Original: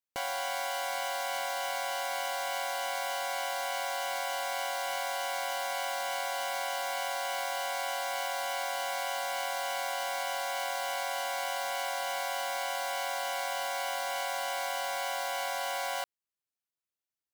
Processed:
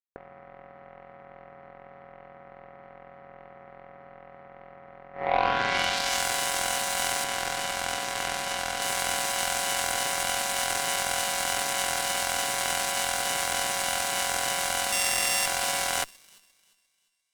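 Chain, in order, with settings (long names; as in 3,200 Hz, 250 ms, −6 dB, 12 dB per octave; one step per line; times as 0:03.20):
0:14.92–0:15.46: samples sorted by size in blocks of 16 samples
low-shelf EQ 230 Hz −9 dB
low-pass filter sweep 430 Hz → 9,000 Hz, 0:05.12–0:06.26
0:07.24–0:08.82: high-frequency loss of the air 57 metres
delay with a high-pass on its return 349 ms, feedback 57%, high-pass 2,500 Hz, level −9 dB
harmonic generator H 5 −12 dB, 7 −10 dB, 8 −28 dB, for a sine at −16.5 dBFS
level +7 dB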